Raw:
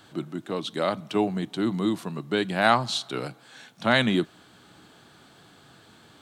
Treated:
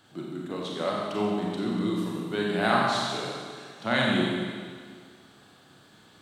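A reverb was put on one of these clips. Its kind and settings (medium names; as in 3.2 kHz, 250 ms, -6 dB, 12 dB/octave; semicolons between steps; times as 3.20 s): Schroeder reverb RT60 1.8 s, combs from 30 ms, DRR -3.5 dB; trim -7 dB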